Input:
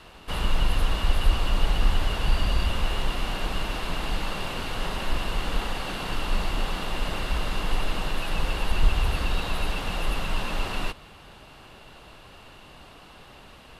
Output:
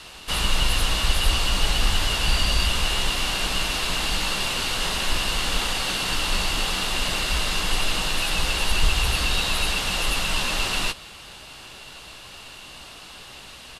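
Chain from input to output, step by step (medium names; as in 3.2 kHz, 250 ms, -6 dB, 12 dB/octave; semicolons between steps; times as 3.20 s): peaking EQ 7.1 kHz +15 dB 2.9 oct; doubling 16 ms -11 dB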